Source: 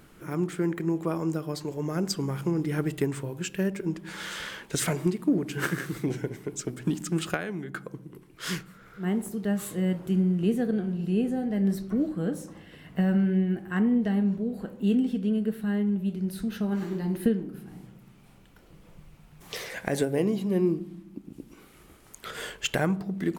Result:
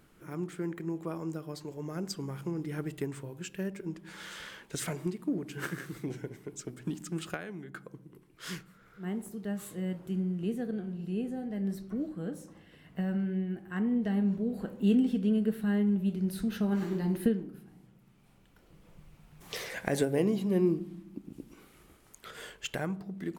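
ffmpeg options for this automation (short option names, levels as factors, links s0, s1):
-af "volume=2.82,afade=t=in:st=13.68:d=0.94:silence=0.446684,afade=t=out:st=17.08:d=0.67:silence=0.281838,afade=t=in:st=17.75:d=1.88:silence=0.316228,afade=t=out:st=21.3:d=1.03:silence=0.473151"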